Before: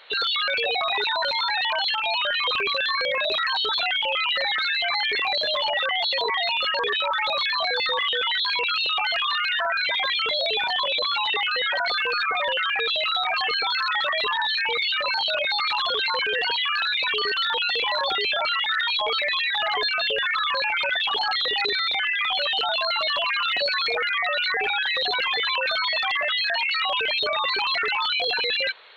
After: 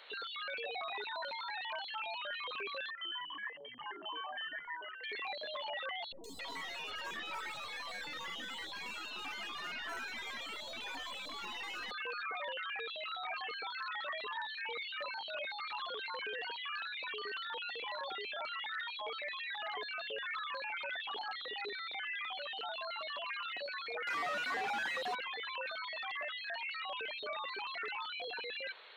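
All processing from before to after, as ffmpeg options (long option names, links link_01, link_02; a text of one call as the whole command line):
ffmpeg -i in.wav -filter_complex "[0:a]asettb=1/sr,asplit=3[link_01][link_02][link_03];[link_01]atrim=end=2.904[link_04];[link_02]atrim=start=2.9:end=5.04,asetpts=PTS-STARTPTS,afade=type=in:duration=0.004:curve=qsin,afade=type=out:start_time=2.136:duration=0.004:curve=qsin,asplit=3[link_05][link_06][link_07];[link_05]bandpass=frequency=530:width_type=q:width=8,volume=0dB[link_08];[link_06]bandpass=frequency=1840:width_type=q:width=8,volume=-6dB[link_09];[link_07]bandpass=frequency=2480:width_type=q:width=8,volume=-9dB[link_10];[link_08][link_09][link_10]amix=inputs=3:normalize=0,bandreject=frequency=60:width_type=h:width=6,bandreject=frequency=120:width_type=h:width=6,bandreject=frequency=180:width_type=h:width=6,bandreject=frequency=240:width_type=h:width=6,bandreject=frequency=300:width_type=h:width=6,bandreject=frequency=360:width_type=h:width=6,bandreject=frequency=420:width_type=h:width=6,bandreject=frequency=480:width_type=h:width=6,bandreject=frequency=540:width_type=h:width=6,bandreject=frequency=600:width_type=h:width=6,lowpass=frequency=3100:width_type=q:width=0.5098,lowpass=frequency=3100:width_type=q:width=0.6013,lowpass=frequency=3100:width_type=q:width=0.9,lowpass=frequency=3100:width_type=q:width=2.563,afreqshift=-3600[link_11];[link_03]atrim=start=5.036[link_12];[link_04][link_11]acrossfade=duration=0.004:curve1=hsin:curve2=qsin[link_13];[link_13][link_12]acrossfade=duration=0.004:curve1=qsin:curve2=hsin,asettb=1/sr,asplit=3[link_14][link_15][link_16];[link_14]atrim=end=6.124[link_17];[link_15]atrim=start=6.12:end=11.91,asetpts=PTS-STARTPTS,afade=type=in:duration=0.004:curve=qsin,afade=type=out:start_time=5.786:duration=0.004:curve=qsin,equalizer=frequency=440:width_type=o:width=2.3:gain=-10,aeval=exprs='clip(val(0),-1,0.0141)':channel_layout=same,acrossover=split=510|5300[link_18][link_19][link_20];[link_20]adelay=120[link_21];[link_19]adelay=270[link_22];[link_18][link_22][link_21]amix=inputs=3:normalize=0,atrim=end_sample=255339[link_23];[link_16]atrim=start=11.906[link_24];[link_17][link_23]acrossfade=duration=0.004:curve1=hsin:curve2=qsin[link_25];[link_25][link_24]acrossfade=duration=0.004:curve1=qsin:curve2=hsin,asettb=1/sr,asplit=3[link_26][link_27][link_28];[link_26]atrim=end=24.074[link_29];[link_27]atrim=start=24.07:end=25.15,asetpts=PTS-STARTPTS,afade=type=in:duration=0.004:curve=qsin,afade=type=out:start_time=1.076:duration=0.004:curve=qsin,equalizer=frequency=970:width=0.79:gain=13,volume=21dB,asoftclip=hard,volume=-21dB,highpass=94[link_30];[link_28]atrim=start=25.146[link_31];[link_29][link_30]acrossfade=duration=0.004:curve1=hsin:curve2=qsin[link_32];[link_32][link_31]acrossfade=duration=0.004:curve1=qsin:curve2=hsin,alimiter=level_in=2dB:limit=-24dB:level=0:latency=1:release=11,volume=-2dB,lowshelf=frequency=170:width_type=q:width=1.5:gain=-8,acrossover=split=3200[link_33][link_34];[link_34]acompressor=threshold=-47dB:ratio=4:attack=1:release=60[link_35];[link_33][link_35]amix=inputs=2:normalize=0,volume=-6.5dB" out.wav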